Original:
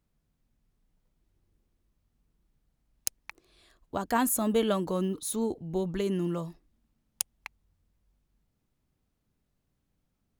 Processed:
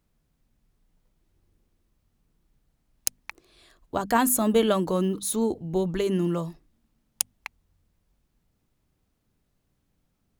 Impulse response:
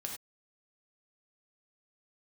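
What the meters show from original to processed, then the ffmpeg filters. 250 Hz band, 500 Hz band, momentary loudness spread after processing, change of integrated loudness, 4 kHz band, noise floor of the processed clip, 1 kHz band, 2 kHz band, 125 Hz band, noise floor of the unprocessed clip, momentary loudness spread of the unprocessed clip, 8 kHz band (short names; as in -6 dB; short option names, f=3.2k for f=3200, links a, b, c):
+4.5 dB, +5.0 dB, 17 LU, +5.0 dB, +5.0 dB, -74 dBFS, +5.0 dB, +5.0 dB, +4.5 dB, -78 dBFS, 17 LU, +5.0 dB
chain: -af "bandreject=f=50:t=h:w=6,bandreject=f=100:t=h:w=6,bandreject=f=150:t=h:w=6,bandreject=f=200:t=h:w=6,bandreject=f=250:t=h:w=6,volume=5dB"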